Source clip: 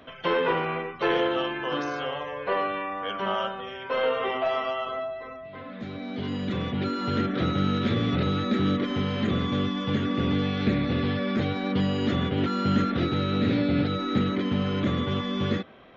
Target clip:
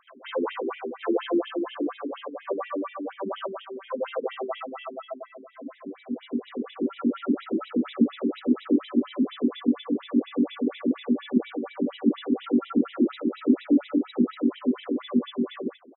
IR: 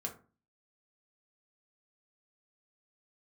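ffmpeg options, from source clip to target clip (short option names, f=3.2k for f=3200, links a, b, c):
-af "equalizer=f=125:t=o:w=1:g=-9,equalizer=f=250:t=o:w=1:g=12,equalizer=f=2k:t=o:w=1:g=-7,aecho=1:1:148:0.668,afftfilt=real='re*between(b*sr/1024,280*pow(2800/280,0.5+0.5*sin(2*PI*4.2*pts/sr))/1.41,280*pow(2800/280,0.5+0.5*sin(2*PI*4.2*pts/sr))*1.41)':imag='im*between(b*sr/1024,280*pow(2800/280,0.5+0.5*sin(2*PI*4.2*pts/sr))/1.41,280*pow(2800/280,0.5+0.5*sin(2*PI*4.2*pts/sr))*1.41)':win_size=1024:overlap=0.75"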